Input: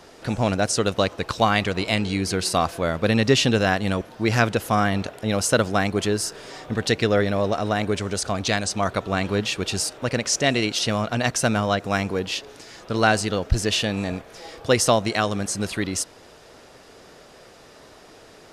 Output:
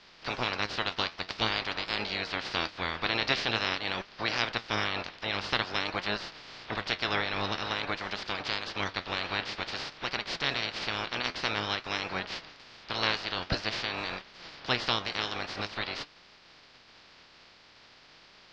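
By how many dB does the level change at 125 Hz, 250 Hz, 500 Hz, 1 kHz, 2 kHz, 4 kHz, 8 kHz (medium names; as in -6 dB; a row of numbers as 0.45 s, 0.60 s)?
-16.5 dB, -16.0 dB, -15.0 dB, -8.5 dB, -5.0 dB, -3.5 dB, -22.5 dB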